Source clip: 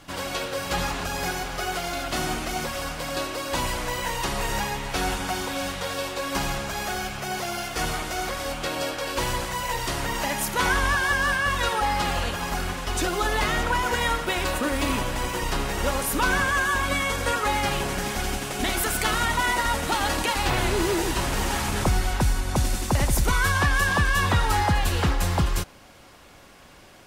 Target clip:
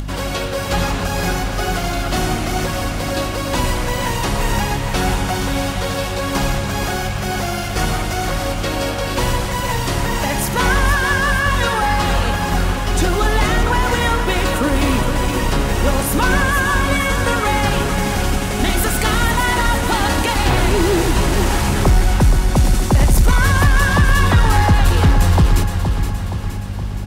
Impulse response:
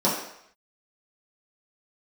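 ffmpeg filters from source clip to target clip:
-filter_complex "[0:a]aeval=exprs='val(0)+0.0126*(sin(2*PI*50*n/s)+sin(2*PI*2*50*n/s)/2+sin(2*PI*3*50*n/s)/3+sin(2*PI*4*50*n/s)/4+sin(2*PI*5*50*n/s)/5)':channel_layout=same,acompressor=mode=upward:threshold=-32dB:ratio=2.5,lowshelf=frequency=380:gain=6.5,asplit=2[link_01][link_02];[link_02]aecho=0:1:470|940|1410|1880|2350|2820|3290:0.355|0.199|0.111|0.0623|0.0349|0.0195|0.0109[link_03];[link_01][link_03]amix=inputs=2:normalize=0,acontrast=70,volume=-1.5dB"

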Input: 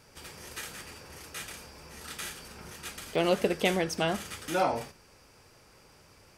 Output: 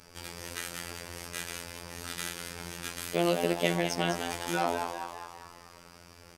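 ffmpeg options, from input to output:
ffmpeg -i in.wav -filter_complex "[0:a]asettb=1/sr,asplit=3[link_01][link_02][link_03];[link_01]atrim=end=3.004[link_04];[link_02]atrim=start=3:end=3.55,asetpts=PTS-STARTPTS,afade=type=in:duration=0.004:curve=qsin,afade=type=out:start_time=0.546:duration=0.004:curve=qsin,highshelf=frequency=9000:gain=8.5[link_05];[link_03]atrim=start=3.546[link_06];[link_04][link_05]acrossfade=duration=0.004:curve1=hsin:curve2=qsin[link_07];[link_07][link_06]acrossfade=duration=0.004:curve1=qsin:curve2=hsin,asplit=2[link_08][link_09];[link_09]acompressor=threshold=-38dB:ratio=6,volume=1dB[link_10];[link_08][link_10]amix=inputs=2:normalize=0,asplit=8[link_11][link_12][link_13][link_14][link_15][link_16][link_17][link_18];[link_12]adelay=200,afreqshift=100,volume=-7.5dB[link_19];[link_13]adelay=400,afreqshift=200,volume=-12.9dB[link_20];[link_14]adelay=600,afreqshift=300,volume=-18.2dB[link_21];[link_15]adelay=800,afreqshift=400,volume=-23.6dB[link_22];[link_16]adelay=1000,afreqshift=500,volume=-28.9dB[link_23];[link_17]adelay=1200,afreqshift=600,volume=-34.3dB[link_24];[link_18]adelay=1400,afreqshift=700,volume=-39.6dB[link_25];[link_11][link_19][link_20][link_21][link_22][link_23][link_24][link_25]amix=inputs=8:normalize=0,afftfilt=real='hypot(re,im)*cos(PI*b)':imag='0':win_size=2048:overlap=0.75" out.wav

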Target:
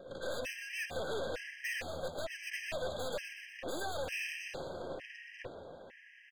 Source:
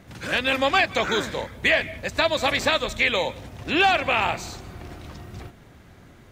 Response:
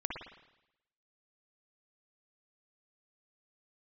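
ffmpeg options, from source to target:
-filter_complex "[0:a]acompressor=threshold=-27dB:ratio=4,asplit=3[link_01][link_02][link_03];[link_01]bandpass=frequency=530:width_type=q:width=8,volume=0dB[link_04];[link_02]bandpass=frequency=1840:width_type=q:width=8,volume=-6dB[link_05];[link_03]bandpass=frequency=2480:width_type=q:width=8,volume=-9dB[link_06];[link_04][link_05][link_06]amix=inputs=3:normalize=0,alimiter=level_in=4.5dB:limit=-24dB:level=0:latency=1:release=168,volume=-4.5dB,aeval=exprs='(tanh(355*val(0)+0.55)-tanh(0.55))/355':channel_layout=same,asplit=2[link_07][link_08];[link_08]asplit=7[link_09][link_10][link_11][link_12][link_13][link_14][link_15];[link_09]adelay=122,afreqshift=80,volume=-9dB[link_16];[link_10]adelay=244,afreqshift=160,volume=-13.7dB[link_17];[link_11]adelay=366,afreqshift=240,volume=-18.5dB[link_18];[link_12]adelay=488,afreqshift=320,volume=-23.2dB[link_19];[link_13]adelay=610,afreqshift=400,volume=-27.9dB[link_20];[link_14]adelay=732,afreqshift=480,volume=-32.7dB[link_21];[link_15]adelay=854,afreqshift=560,volume=-37.4dB[link_22];[link_16][link_17][link_18][link_19][link_20][link_21][link_22]amix=inputs=7:normalize=0[link_23];[link_07][link_23]amix=inputs=2:normalize=0,afftfilt=real='re*gt(sin(2*PI*1.1*pts/sr)*(1-2*mod(floor(b*sr/1024/1600),2)),0)':imag='im*gt(sin(2*PI*1.1*pts/sr)*(1-2*mod(floor(b*sr/1024/1600),2)),0)':win_size=1024:overlap=0.75,volume=16dB"

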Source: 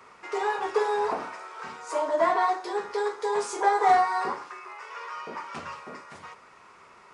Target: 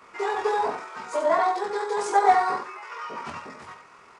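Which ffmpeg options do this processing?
ffmpeg -i in.wav -af "aecho=1:1:34.99|145.8:0.794|0.501,atempo=1.7" out.wav

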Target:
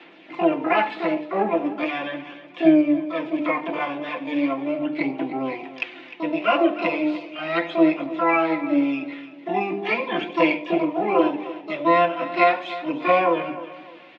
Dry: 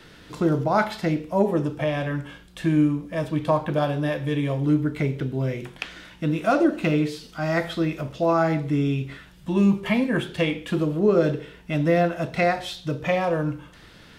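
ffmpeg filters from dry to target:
ffmpeg -i in.wav -filter_complex "[0:a]aemphasis=mode=production:type=50fm,bandreject=frequency=50:width_type=h:width=6,bandreject=frequency=100:width_type=h:width=6,bandreject=frequency=150:width_type=h:width=6,bandreject=frequency=200:width_type=h:width=6,bandreject=frequency=250:width_type=h:width=6,bandreject=frequency=300:width_type=h:width=6,bandreject=frequency=350:width_type=h:width=6,aecho=1:1:5.8:0.91,asplit=2[link_01][link_02];[link_02]asetrate=88200,aresample=44100,atempo=0.5,volume=-3dB[link_03];[link_01][link_03]amix=inputs=2:normalize=0,aphaser=in_gain=1:out_gain=1:delay=4.9:decay=0.35:speed=0.38:type=sinusoidal,highpass=frequency=250:width=0.5412,highpass=frequency=250:width=1.3066,equalizer=frequency=300:width_type=q:width=4:gain=5,equalizer=frequency=430:width_type=q:width=4:gain=-3,equalizer=frequency=760:width_type=q:width=4:gain=4,equalizer=frequency=1500:width_type=q:width=4:gain=-5,equalizer=frequency=2400:width_type=q:width=4:gain=8,lowpass=frequency=3000:width=0.5412,lowpass=frequency=3000:width=1.3066,asplit=2[link_04][link_05];[link_05]aecho=0:1:304|608|912:0.178|0.0569|0.0182[link_06];[link_04][link_06]amix=inputs=2:normalize=0,volume=-4.5dB" out.wav

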